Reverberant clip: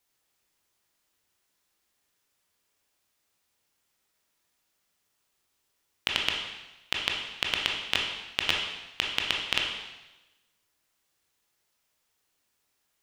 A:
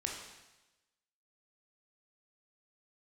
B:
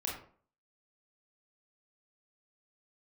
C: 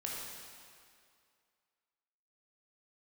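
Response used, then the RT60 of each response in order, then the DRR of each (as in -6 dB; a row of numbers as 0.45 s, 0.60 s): A; 1.0 s, 0.50 s, 2.3 s; -0.5 dB, -3.0 dB, -4.0 dB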